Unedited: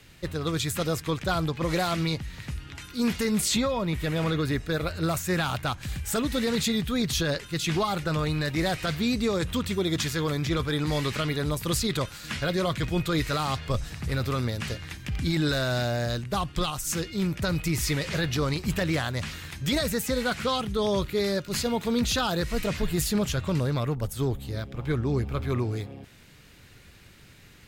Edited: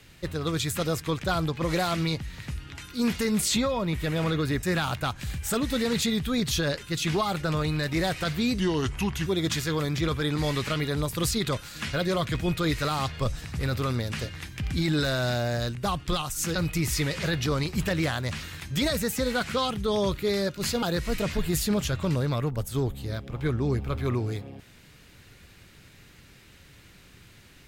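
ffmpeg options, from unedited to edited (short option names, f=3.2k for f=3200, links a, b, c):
-filter_complex "[0:a]asplit=6[a][b][c][d][e][f];[a]atrim=end=4.632[g];[b]atrim=start=5.248:end=9.214[h];[c]atrim=start=9.21:end=9.75,asetpts=PTS-STARTPTS,asetrate=35280,aresample=44100[i];[d]atrim=start=9.746:end=17.042[j];[e]atrim=start=17.458:end=21.732[k];[f]atrim=start=22.268[l];[g][h]acrossfade=d=0.004:c1=hsin:c2=hsin[m];[m][i]acrossfade=d=0.004:c1=hsin:c2=hsin[n];[n][j]acrossfade=d=0.004:c1=hsin:c2=hsin[o];[o][k]acrossfade=d=0.004:c1=hsin:c2=hsin[p];[p][l]acrossfade=d=0.004:c1=hsin:c2=hsin"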